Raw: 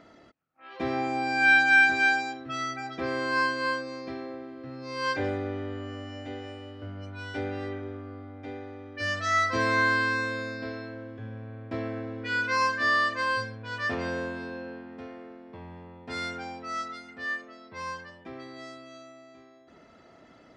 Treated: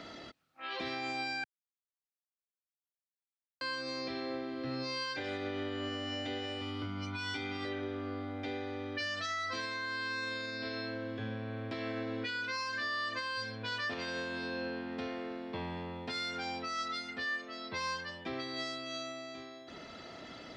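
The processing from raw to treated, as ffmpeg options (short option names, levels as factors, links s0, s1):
-filter_complex "[0:a]asettb=1/sr,asplit=3[s0][s1][s2];[s0]atrim=end=6.614[s3];[s1]atrim=start=6.61:end=7.65,asetpts=PTS-STARTPTS,afade=t=in:d=0.004:c=qsin,afade=t=out:st=1.036:d=0.004:c=qsin,aecho=1:1:0.9:0.76,atrim=end_sample=45864[s4];[s2]atrim=start=7.646[s5];[s3][s4]acrossfade=d=0.004:c1=hsin:c2=qsin[s6];[s6][s5]acrossfade=d=0.004:c1=qsin:c2=hsin,asplit=3[s7][s8][s9];[s7]atrim=end=1.44,asetpts=PTS-STARTPTS,afade=t=out:st=1.436:d=0.004:c=hsin[s10];[s8]atrim=start=1.44:end=3.61,asetpts=PTS-STARTPTS,volume=0[s11];[s9]atrim=start=3.61,asetpts=PTS-STARTPTS,afade=t=in:d=0.004:c=hsin[s12];[s10][s11][s12]concat=n=3:v=0:a=1,acrossover=split=130|1300[s13][s14][s15];[s13]acompressor=threshold=0.00178:ratio=4[s16];[s14]acompressor=threshold=0.02:ratio=4[s17];[s15]acompressor=threshold=0.02:ratio=4[s18];[s16][s17][s18]amix=inputs=3:normalize=0,equalizer=f=3900:t=o:w=1.3:g=11,alimiter=level_in=3.16:limit=0.0631:level=0:latency=1:release=406,volume=0.316,volume=1.78"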